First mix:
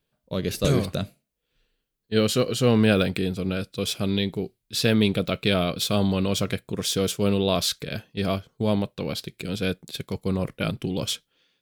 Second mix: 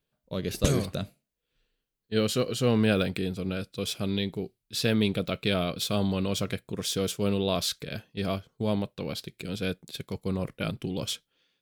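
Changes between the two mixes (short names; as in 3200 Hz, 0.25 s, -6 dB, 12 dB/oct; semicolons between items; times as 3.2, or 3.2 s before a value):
speech -4.5 dB; background +3.5 dB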